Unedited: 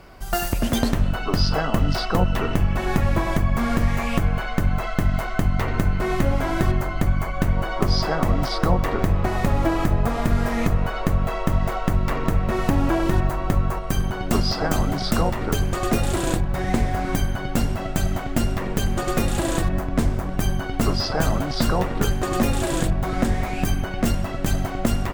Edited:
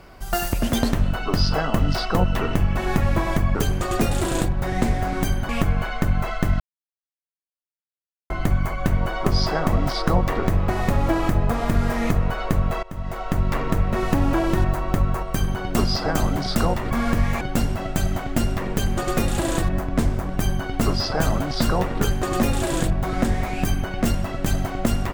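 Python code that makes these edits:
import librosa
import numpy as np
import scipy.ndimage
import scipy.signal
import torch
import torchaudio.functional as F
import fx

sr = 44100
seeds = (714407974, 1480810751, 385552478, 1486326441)

y = fx.edit(x, sr, fx.swap(start_s=3.55, length_s=0.5, other_s=15.47, other_length_s=1.94),
    fx.silence(start_s=5.16, length_s=1.7),
    fx.fade_in_from(start_s=11.39, length_s=0.62, floor_db=-21.5), tone=tone)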